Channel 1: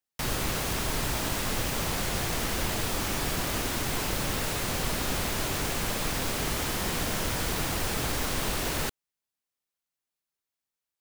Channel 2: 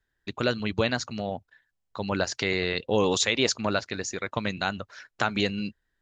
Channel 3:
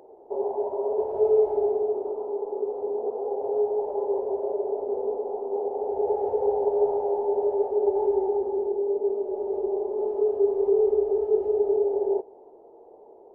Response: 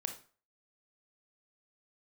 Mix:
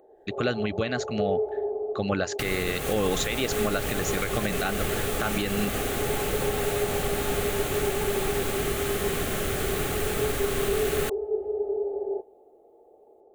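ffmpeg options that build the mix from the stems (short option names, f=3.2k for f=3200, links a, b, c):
-filter_complex "[0:a]adelay=2200,volume=1dB[a];[1:a]dynaudnorm=f=110:g=3:m=11dB,volume=-5.5dB[b];[2:a]equalizer=f=60:w=1.5:g=5.5,volume=-5.5dB[c];[a][b][c]amix=inputs=3:normalize=0,asuperstop=centerf=960:order=20:qfactor=6.2,equalizer=f=5.1k:t=o:w=0.56:g=-9.5,alimiter=limit=-15dB:level=0:latency=1:release=104"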